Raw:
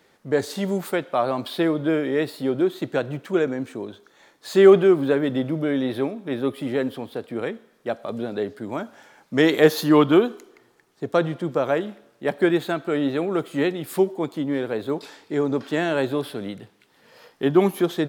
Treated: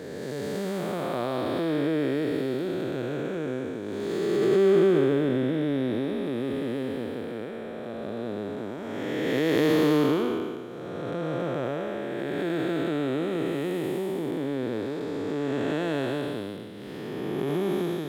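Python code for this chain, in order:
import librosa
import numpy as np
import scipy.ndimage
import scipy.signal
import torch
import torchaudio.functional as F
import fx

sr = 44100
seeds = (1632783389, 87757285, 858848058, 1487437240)

y = fx.spec_blur(x, sr, span_ms=608.0)
y = fx.pre_swell(y, sr, db_per_s=20.0)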